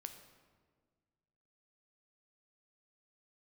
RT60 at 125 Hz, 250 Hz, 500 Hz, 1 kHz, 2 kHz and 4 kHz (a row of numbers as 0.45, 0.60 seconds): 2.2, 2.0, 1.8, 1.5, 1.2, 1.0 seconds